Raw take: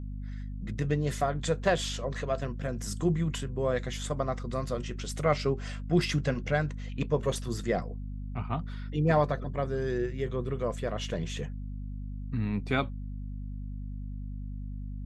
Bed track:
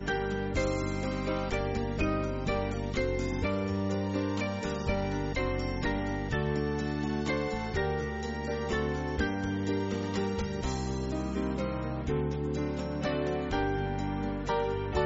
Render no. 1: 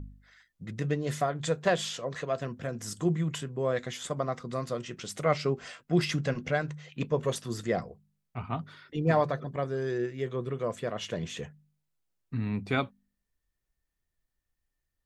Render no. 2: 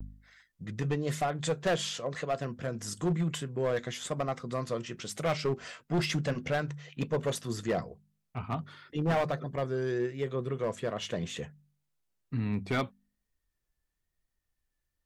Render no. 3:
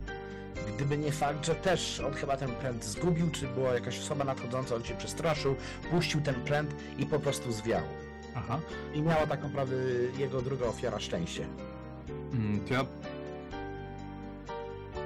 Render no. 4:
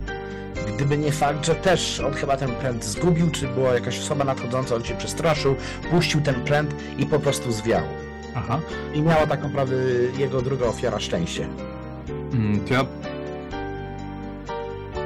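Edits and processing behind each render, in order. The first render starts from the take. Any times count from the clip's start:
hum removal 50 Hz, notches 5
hard clipping −23.5 dBFS, distortion −11 dB; pitch vibrato 1 Hz 50 cents
mix in bed track −10 dB
level +9.5 dB

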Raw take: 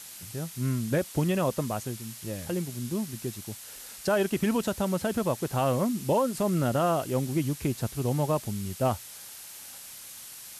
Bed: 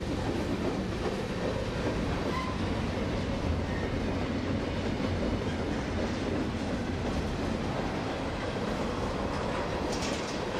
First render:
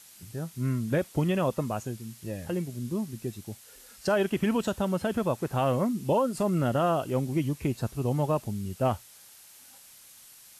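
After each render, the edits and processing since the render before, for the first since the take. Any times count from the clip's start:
noise reduction from a noise print 8 dB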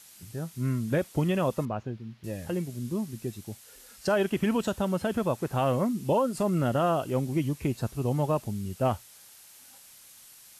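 0:01.65–0:02.24: high-frequency loss of the air 290 metres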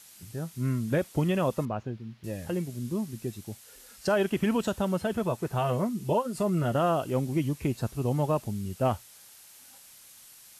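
0:05.01–0:06.75: notch comb filter 270 Hz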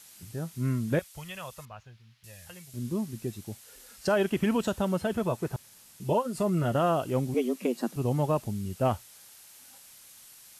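0:00.99–0:02.74: guitar amp tone stack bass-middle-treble 10-0-10
0:05.56–0:06.00: fill with room tone
0:07.34–0:07.96: frequency shifter +120 Hz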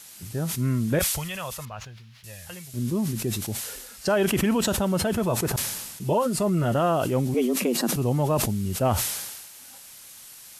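in parallel at +1 dB: brickwall limiter −27 dBFS, peak gain reduction 11 dB
on the sum: level that may fall only so fast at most 41 dB per second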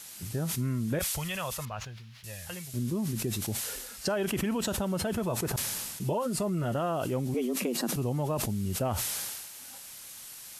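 downward compressor 3 to 1, threshold −29 dBFS, peak gain reduction 8.5 dB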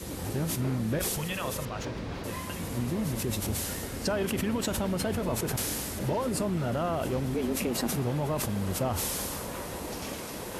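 mix in bed −6 dB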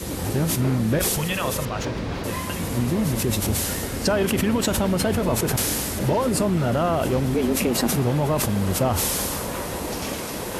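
level +8 dB

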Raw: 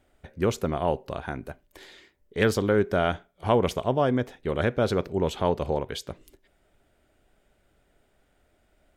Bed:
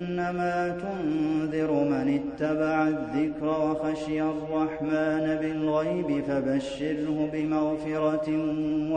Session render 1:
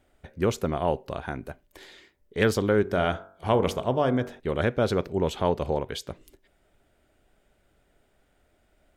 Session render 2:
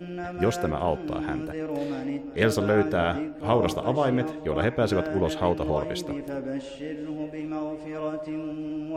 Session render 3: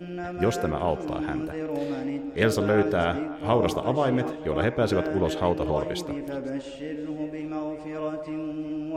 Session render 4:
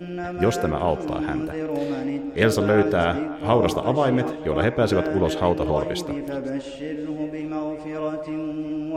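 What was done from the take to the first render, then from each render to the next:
0:02.81–0:04.40: hum removal 47.71 Hz, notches 34
mix in bed −5.5 dB
echo through a band-pass that steps 122 ms, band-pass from 370 Hz, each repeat 1.4 octaves, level −10 dB
level +3.5 dB

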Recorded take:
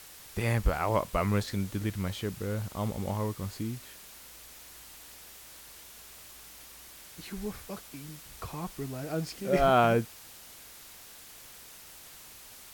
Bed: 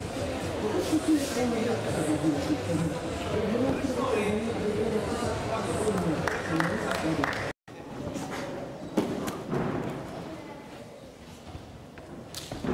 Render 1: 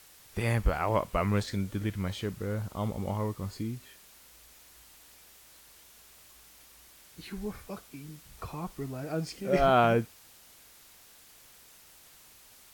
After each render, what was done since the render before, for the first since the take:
noise reduction from a noise print 6 dB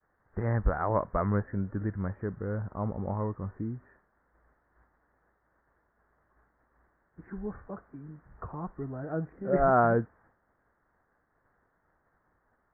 Butterworth low-pass 1,800 Hz 72 dB per octave
downward expander −58 dBFS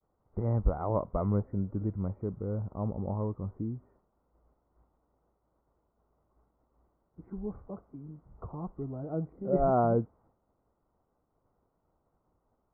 moving average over 26 samples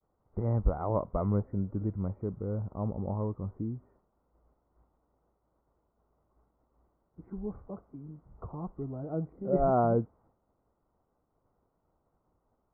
no processing that can be heard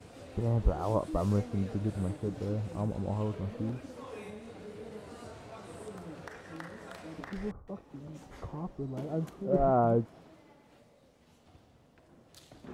mix in bed −17 dB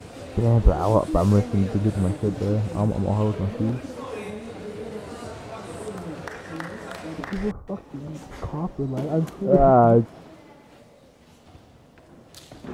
level +10.5 dB

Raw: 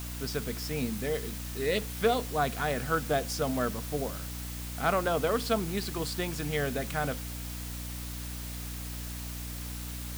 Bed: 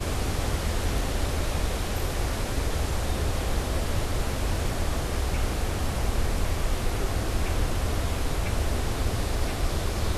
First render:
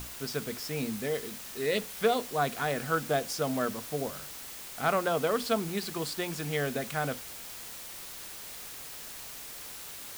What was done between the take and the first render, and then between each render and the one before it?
mains-hum notches 60/120/180/240/300 Hz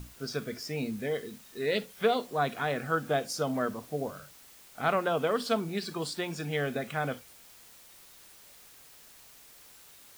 noise reduction from a noise print 11 dB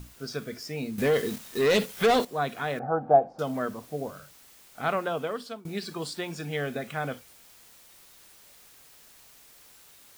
0:00.98–0:02.25: leveller curve on the samples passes 3
0:02.79–0:03.39: low-pass with resonance 780 Hz, resonance Q 8.1
0:04.81–0:05.65: fade out equal-power, to −22 dB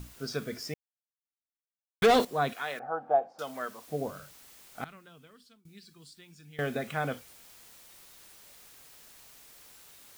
0:00.74–0:02.02: silence
0:02.53–0:03.88: high-pass filter 1,200 Hz 6 dB per octave
0:04.84–0:06.59: guitar amp tone stack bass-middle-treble 6-0-2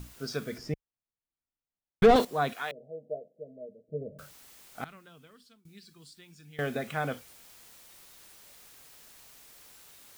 0:00.58–0:02.16: spectral tilt −3 dB per octave
0:02.71–0:04.19: Chebyshev low-pass with heavy ripple 640 Hz, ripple 9 dB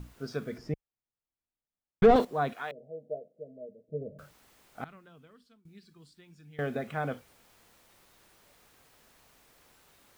high-shelf EQ 2,600 Hz −11.5 dB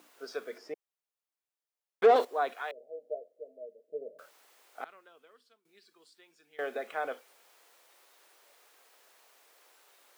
high-pass filter 400 Hz 24 dB per octave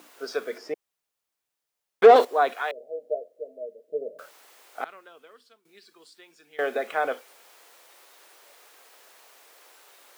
level +8.5 dB

